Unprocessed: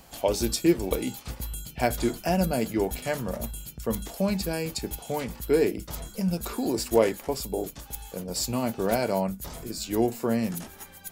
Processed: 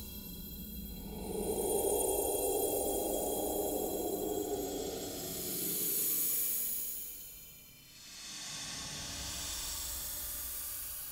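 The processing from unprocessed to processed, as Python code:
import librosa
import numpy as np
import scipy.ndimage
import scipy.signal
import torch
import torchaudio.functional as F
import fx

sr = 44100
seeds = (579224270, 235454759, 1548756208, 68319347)

y = fx.paulstretch(x, sr, seeds[0], factor=30.0, window_s=0.05, from_s=7.48)
y = fx.tilt_shelf(y, sr, db=-7.5, hz=1300.0)
y = F.gain(torch.from_numpy(y), -1.5).numpy()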